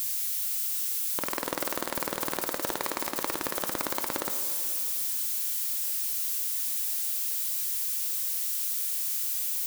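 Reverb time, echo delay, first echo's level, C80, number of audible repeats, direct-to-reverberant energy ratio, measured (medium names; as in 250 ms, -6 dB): 2.8 s, no echo, no echo, 9.5 dB, no echo, 7.5 dB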